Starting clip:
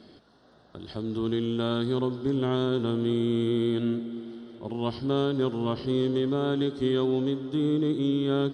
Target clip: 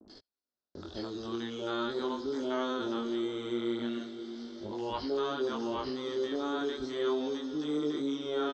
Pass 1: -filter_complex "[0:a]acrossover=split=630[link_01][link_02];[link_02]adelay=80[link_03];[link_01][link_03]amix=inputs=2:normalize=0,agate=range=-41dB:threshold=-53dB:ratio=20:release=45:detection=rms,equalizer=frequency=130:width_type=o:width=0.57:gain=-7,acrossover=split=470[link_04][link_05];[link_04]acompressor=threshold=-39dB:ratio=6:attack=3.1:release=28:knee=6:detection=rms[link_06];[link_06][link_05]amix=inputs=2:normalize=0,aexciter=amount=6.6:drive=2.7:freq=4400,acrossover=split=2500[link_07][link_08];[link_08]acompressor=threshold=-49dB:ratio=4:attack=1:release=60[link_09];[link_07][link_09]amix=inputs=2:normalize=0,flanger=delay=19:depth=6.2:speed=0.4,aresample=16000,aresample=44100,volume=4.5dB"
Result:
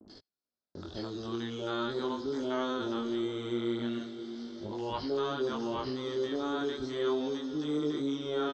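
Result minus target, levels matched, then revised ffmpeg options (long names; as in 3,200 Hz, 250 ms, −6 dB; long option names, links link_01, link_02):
125 Hz band +5.5 dB
-filter_complex "[0:a]acrossover=split=630[link_01][link_02];[link_02]adelay=80[link_03];[link_01][link_03]amix=inputs=2:normalize=0,agate=range=-41dB:threshold=-53dB:ratio=20:release=45:detection=rms,equalizer=frequency=130:width_type=o:width=0.57:gain=-18.5,acrossover=split=470[link_04][link_05];[link_04]acompressor=threshold=-39dB:ratio=6:attack=3.1:release=28:knee=6:detection=rms[link_06];[link_06][link_05]amix=inputs=2:normalize=0,aexciter=amount=6.6:drive=2.7:freq=4400,acrossover=split=2500[link_07][link_08];[link_08]acompressor=threshold=-49dB:ratio=4:attack=1:release=60[link_09];[link_07][link_09]amix=inputs=2:normalize=0,flanger=delay=19:depth=6.2:speed=0.4,aresample=16000,aresample=44100,volume=4.5dB"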